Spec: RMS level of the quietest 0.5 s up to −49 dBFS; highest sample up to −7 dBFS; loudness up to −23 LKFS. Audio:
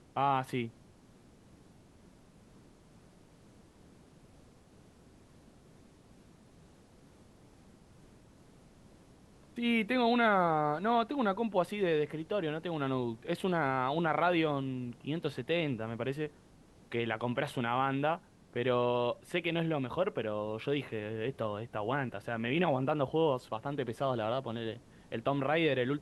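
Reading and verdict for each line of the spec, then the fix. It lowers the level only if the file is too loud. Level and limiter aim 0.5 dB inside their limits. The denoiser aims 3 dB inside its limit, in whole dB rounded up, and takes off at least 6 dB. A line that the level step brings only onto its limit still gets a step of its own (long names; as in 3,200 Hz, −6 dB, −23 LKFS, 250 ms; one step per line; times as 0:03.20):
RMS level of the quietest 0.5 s −59 dBFS: in spec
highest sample −16.0 dBFS: in spec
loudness −33.0 LKFS: in spec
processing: no processing needed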